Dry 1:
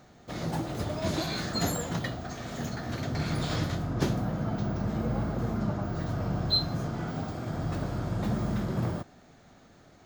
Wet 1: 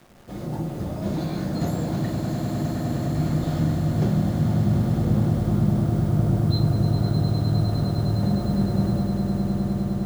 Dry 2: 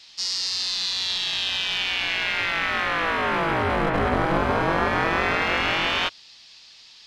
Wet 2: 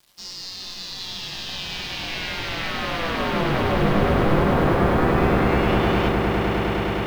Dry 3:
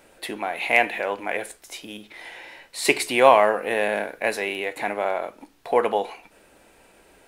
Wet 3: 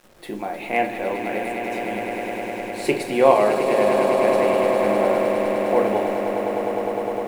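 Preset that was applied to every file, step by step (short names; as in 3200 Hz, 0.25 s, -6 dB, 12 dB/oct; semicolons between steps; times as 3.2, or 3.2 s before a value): tilt shelf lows +7 dB, about 820 Hz; requantised 8-bit, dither none; on a send: swelling echo 0.102 s, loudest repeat 8, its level -10 dB; on the sum: shoebox room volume 310 m³, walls furnished, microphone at 0.92 m; gain -3.5 dB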